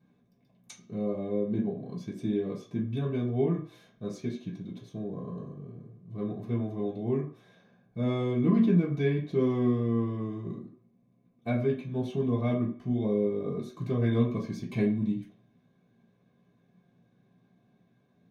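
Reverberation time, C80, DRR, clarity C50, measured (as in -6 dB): 0.45 s, 12.5 dB, -7.5 dB, 8.5 dB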